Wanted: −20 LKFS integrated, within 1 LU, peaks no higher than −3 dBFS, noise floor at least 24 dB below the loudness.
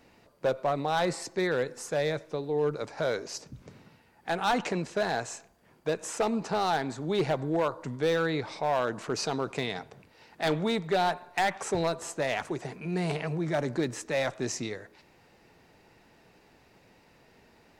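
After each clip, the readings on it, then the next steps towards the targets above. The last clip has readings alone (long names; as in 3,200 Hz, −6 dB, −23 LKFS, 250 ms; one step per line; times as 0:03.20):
share of clipped samples 0.9%; peaks flattened at −20.5 dBFS; integrated loudness −30.5 LKFS; sample peak −20.5 dBFS; target loudness −20.0 LKFS
→ clipped peaks rebuilt −20.5 dBFS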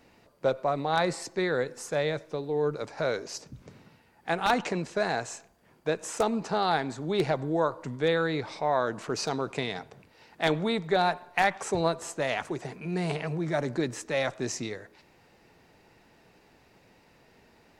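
share of clipped samples 0.0%; integrated loudness −29.5 LKFS; sample peak −11.5 dBFS; target loudness −20.0 LKFS
→ level +9.5 dB
brickwall limiter −3 dBFS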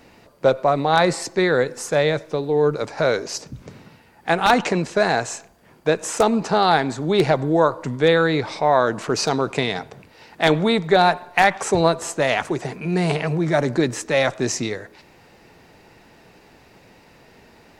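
integrated loudness −20.0 LKFS; sample peak −3.0 dBFS; background noise floor −52 dBFS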